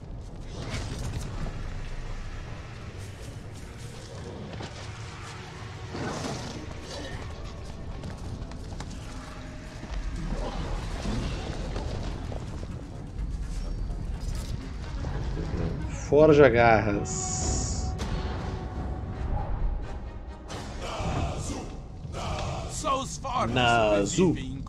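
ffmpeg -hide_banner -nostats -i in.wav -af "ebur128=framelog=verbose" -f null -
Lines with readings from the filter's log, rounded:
Integrated loudness:
  I:         -29.6 LUFS
  Threshold: -40.2 LUFS
Loudness range:
  LRA:        15.5 LU
  Threshold: -50.5 LUFS
  LRA low:   -39.1 LUFS
  LRA high:  -23.6 LUFS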